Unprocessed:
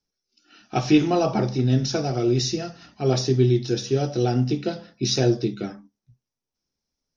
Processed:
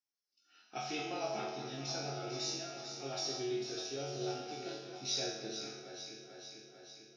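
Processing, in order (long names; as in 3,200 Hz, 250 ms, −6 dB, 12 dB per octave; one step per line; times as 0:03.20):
high-pass filter 780 Hz 6 dB per octave
resonators tuned to a chord F#2 minor, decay 0.8 s
delay that swaps between a low-pass and a high-pass 223 ms, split 1,900 Hz, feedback 81%, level −6.5 dB
level +7 dB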